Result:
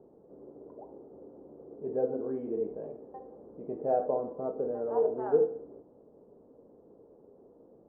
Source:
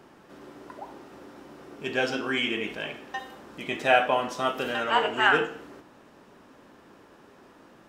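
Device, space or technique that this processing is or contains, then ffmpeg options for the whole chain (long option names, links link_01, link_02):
under water: -af "lowpass=frequency=700:width=0.5412,lowpass=frequency=700:width=1.3066,equalizer=frequency=460:width_type=o:width=0.4:gain=11,volume=-6dB"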